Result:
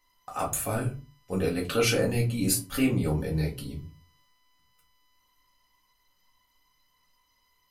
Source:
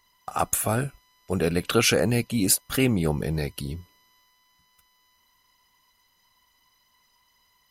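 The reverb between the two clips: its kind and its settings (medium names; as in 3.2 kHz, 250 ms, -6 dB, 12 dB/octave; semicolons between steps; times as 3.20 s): simulated room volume 120 m³, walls furnished, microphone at 2 m; trim -9 dB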